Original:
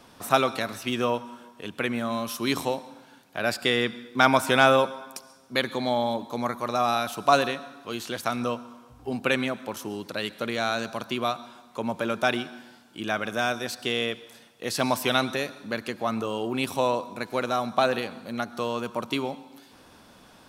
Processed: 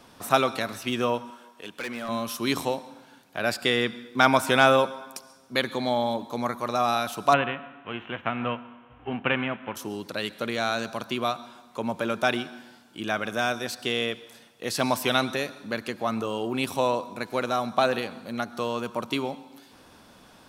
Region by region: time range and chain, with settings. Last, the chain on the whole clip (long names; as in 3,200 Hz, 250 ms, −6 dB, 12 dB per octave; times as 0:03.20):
0:01.30–0:02.09: high-pass filter 460 Hz 6 dB per octave + hard clipping −28.5 dBFS
0:07.32–0:09.75: spectral envelope flattened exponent 0.6 + elliptic low-pass filter 3,000 Hz
whole clip: no processing